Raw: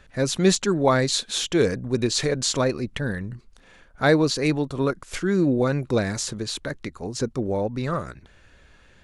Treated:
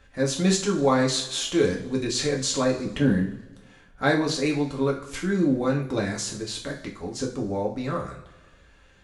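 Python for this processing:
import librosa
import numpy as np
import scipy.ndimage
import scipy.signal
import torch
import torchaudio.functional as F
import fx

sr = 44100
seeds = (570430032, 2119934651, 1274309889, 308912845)

y = fx.peak_eq(x, sr, hz=260.0, db=12.5, octaves=1.7, at=(2.85, 3.25))
y = fx.rev_double_slope(y, sr, seeds[0], early_s=0.39, late_s=1.5, knee_db=-17, drr_db=-1.0)
y = F.gain(torch.from_numpy(y), -5.5).numpy()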